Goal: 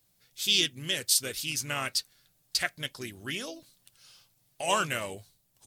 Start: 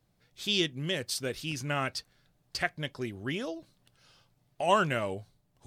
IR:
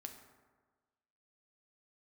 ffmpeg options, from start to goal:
-filter_complex "[0:a]asplit=2[a][b];[b]asetrate=37084,aresample=44100,atempo=1.18921,volume=-11dB[c];[a][c]amix=inputs=2:normalize=0,crystalizer=i=6.5:c=0,volume=-6dB"

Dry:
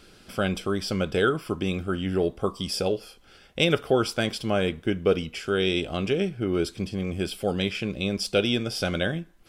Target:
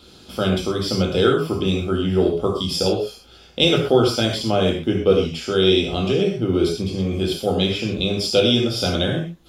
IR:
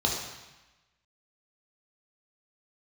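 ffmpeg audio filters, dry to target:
-filter_complex "[0:a]highshelf=f=6.2k:g=9[a];[1:a]atrim=start_sample=2205,atrim=end_sample=6174[b];[a][b]afir=irnorm=-1:irlink=0,volume=-6.5dB"

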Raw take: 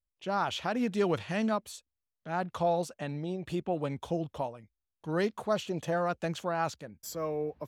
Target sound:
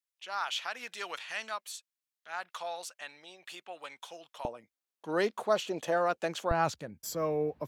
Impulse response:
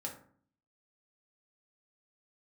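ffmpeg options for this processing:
-af "asetnsamples=n=441:p=0,asendcmd='4.45 highpass f 340;6.51 highpass f 78',highpass=1.4k,volume=2.5dB"

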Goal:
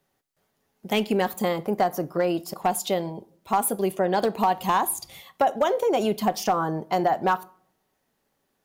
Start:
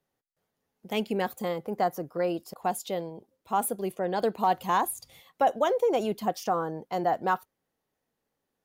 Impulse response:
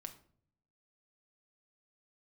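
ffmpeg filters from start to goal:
-filter_complex "[0:a]bandreject=f=490:w=12,acompressor=threshold=-27dB:ratio=5,asoftclip=type=hard:threshold=-22.5dB,asplit=2[a][b];[1:a]atrim=start_sample=2205,lowshelf=f=400:g=-6.5[c];[b][c]afir=irnorm=-1:irlink=0,volume=0dB[d];[a][d]amix=inputs=2:normalize=0,volume=5.5dB"

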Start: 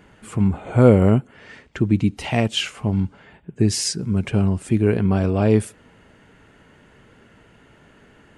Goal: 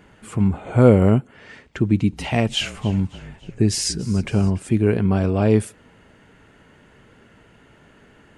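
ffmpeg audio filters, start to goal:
-filter_complex "[0:a]asettb=1/sr,asplit=3[a][b][c];[a]atrim=end=1.844[d];[b]atrim=start=1.84:end=4.6,asetpts=PTS-STARTPTS,afade=t=in:d=0.004:c=qsin,afade=t=out:st=2.756:d=0.004:c=qsin,asplit=6[e][f][g][h][i][j];[f]adelay=286,afreqshift=-39,volume=-18.5dB[k];[g]adelay=572,afreqshift=-78,volume=-23.9dB[l];[h]adelay=858,afreqshift=-117,volume=-29.2dB[m];[i]adelay=1144,afreqshift=-156,volume=-34.6dB[n];[j]adelay=1430,afreqshift=-195,volume=-39.9dB[o];[e][k][l][m][n][o]amix=inputs=6:normalize=0,atrim=end_sample=121716[p];[c]atrim=start=4.596[q];[d][p]acrossfade=d=0.004:c1=hsin:c2=qsin[r];[r][q]acrossfade=d=0.004:c1=qsin:c2=hsin"

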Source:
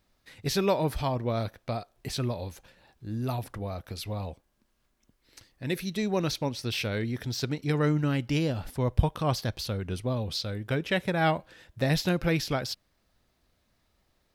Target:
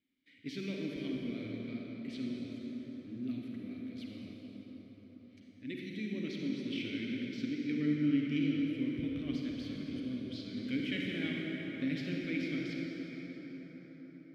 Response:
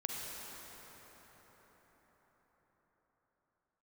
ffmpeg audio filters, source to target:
-filter_complex "[0:a]asettb=1/sr,asplit=3[a][b][c];[a]atrim=end=10.574[d];[b]atrim=start=10.57:end=11.27,asetpts=PTS-STARTPTS,afade=t=in:d=0.004:c=qsin,afade=t=out:st=0.696:d=0.004:c=qsin,aeval=exprs='val(0)+0.5*0.0299*sgn(val(0))':c=same[e];[c]atrim=start=11.266[f];[d][e]acrossfade=d=0.004:c1=hsin:c2=qsin[g];[g][f]acrossfade=d=0.004:c1=qsin:c2=hsin,asplit=3[h][i][j];[h]bandpass=f=270:t=q:w=8,volume=0dB[k];[i]bandpass=f=2.29k:t=q:w=8,volume=-6dB[l];[j]bandpass=f=3.01k:t=q:w=8,volume=-9dB[m];[k][l][m]amix=inputs=3:normalize=0[n];[1:a]atrim=start_sample=2205[o];[n][o]afir=irnorm=-1:irlink=0,volume=2.5dB"

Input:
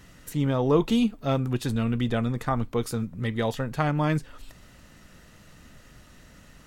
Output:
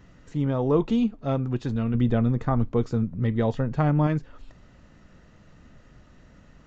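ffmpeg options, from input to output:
-filter_complex "[0:a]highshelf=f=2k:g=-11.5,aresample=16000,aresample=44100,asettb=1/sr,asplit=3[a][b][c];[a]atrim=end=1.944[d];[b]atrim=start=1.94:end=4.07,asetpts=PTS-STARTPTS,afade=t=in:d=0.004:c=qsin,afade=t=out:st=2.126:d=0.004:c=qsin,lowshelf=f=480:g=5.5[e];[c]atrim=start=4.066[f];[d][e]acrossfade=d=0.004:c1=hsin:c2=qsin[g];[g][f]acrossfade=d=0.004:c1=qsin:c2=hsin"

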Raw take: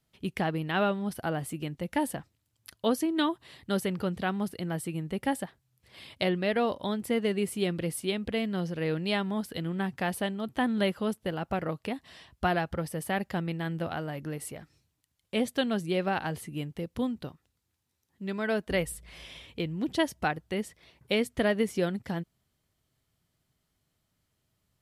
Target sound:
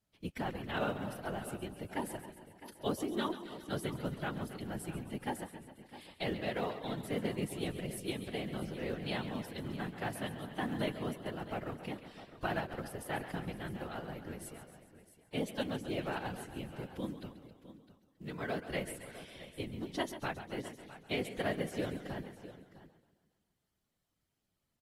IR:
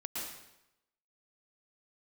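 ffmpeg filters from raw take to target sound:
-filter_complex "[0:a]asplit=2[a][b];[b]aecho=0:1:136|272|408|544|680|816:0.237|0.135|0.077|0.0439|0.025|0.0143[c];[a][c]amix=inputs=2:normalize=0,afftfilt=real='hypot(re,im)*cos(2*PI*random(0))':imag='hypot(re,im)*sin(2*PI*random(1))':win_size=512:overlap=0.75,acrusher=bits=8:mode=log:mix=0:aa=0.000001,asplit=2[d][e];[e]aecho=0:1:266|658:0.106|0.178[f];[d][f]amix=inputs=2:normalize=0,volume=-3dB" -ar 48000 -c:a aac -b:a 48k

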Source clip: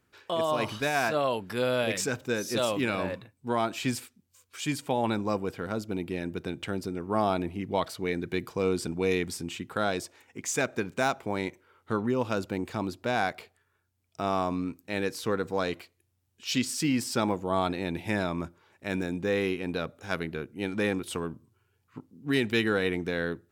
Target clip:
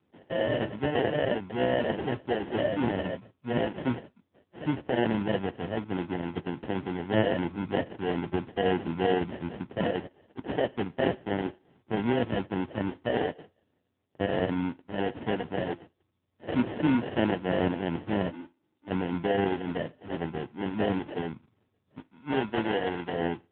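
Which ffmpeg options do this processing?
-filter_complex "[0:a]asplit=3[a][b][c];[a]afade=t=out:st=15.27:d=0.02[d];[b]adynamicequalizer=threshold=0.00794:dfrequency=490:dqfactor=2:tfrequency=490:tqfactor=2:attack=5:release=100:ratio=0.375:range=3.5:mode=cutabove:tftype=bell,afade=t=in:st=15.27:d=0.02,afade=t=out:st=15.67:d=0.02[e];[c]afade=t=in:st=15.67:d=0.02[f];[d][e][f]amix=inputs=3:normalize=0,asplit=3[g][h][i];[g]afade=t=out:st=18.29:d=0.02[j];[h]asplit=3[k][l][m];[k]bandpass=f=300:t=q:w=8,volume=0dB[n];[l]bandpass=f=870:t=q:w=8,volume=-6dB[o];[m]bandpass=f=2.24k:t=q:w=8,volume=-9dB[p];[n][o][p]amix=inputs=3:normalize=0,afade=t=in:st=18.29:d=0.02,afade=t=out:st=18.87:d=0.02[q];[i]afade=t=in:st=18.87:d=0.02[r];[j][q][r]amix=inputs=3:normalize=0,acrusher=samples=37:mix=1:aa=0.000001,asplit=3[s][t][u];[s]afade=t=out:st=21.99:d=0.02[v];[t]lowshelf=f=280:g=-9,afade=t=in:st=21.99:d=0.02,afade=t=out:st=23.11:d=0.02[w];[u]afade=t=in:st=23.11:d=0.02[x];[v][w][x]amix=inputs=3:normalize=0,volume=2dB" -ar 8000 -c:a libopencore_amrnb -b:a 5900

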